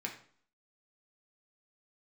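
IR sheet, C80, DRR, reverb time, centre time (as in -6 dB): 12.5 dB, 0.0 dB, 0.50 s, 18 ms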